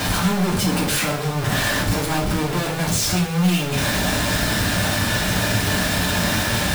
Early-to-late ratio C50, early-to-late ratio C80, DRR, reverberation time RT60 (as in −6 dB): 7.0 dB, 12.0 dB, −5.0 dB, 0.45 s